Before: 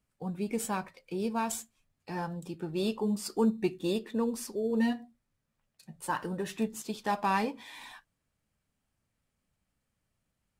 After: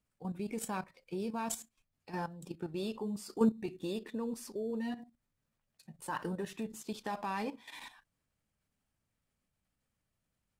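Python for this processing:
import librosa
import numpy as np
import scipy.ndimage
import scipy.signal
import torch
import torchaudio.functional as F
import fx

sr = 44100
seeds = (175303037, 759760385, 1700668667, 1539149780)

y = fx.level_steps(x, sr, step_db=12)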